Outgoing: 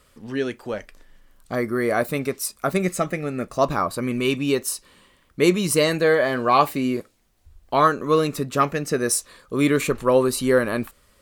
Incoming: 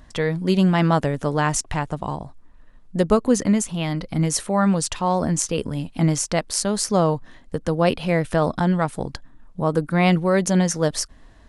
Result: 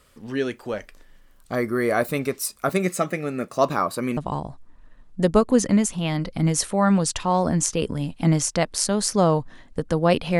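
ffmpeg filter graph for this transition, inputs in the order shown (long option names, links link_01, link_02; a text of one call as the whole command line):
ffmpeg -i cue0.wav -i cue1.wav -filter_complex "[0:a]asettb=1/sr,asplit=3[link_01][link_02][link_03];[link_01]atrim=end=2.694[link_04];[link_02]atrim=start=2.69:end=4.17,asetpts=PTS-STARTPTS,afade=type=in:duration=0.004:curve=qsin,afade=type=out:start_time=1.476:duration=0.004:curve=qsin,highpass=130[link_05];[link_03]atrim=start=4.166[link_06];[link_04][link_05]acrossfade=duration=0.004:curve1=hsin:curve2=qsin[link_07];[link_07][link_06]acrossfade=duration=0.004:curve1=qsin:curve2=hsin,apad=whole_dur=10.39,atrim=end=10.39,atrim=end=4.172[link_08];[1:a]atrim=start=1.928:end=8.15[link_09];[link_08][link_09]acrossfade=duration=0.004:curve1=hsin:curve2=hsin" out.wav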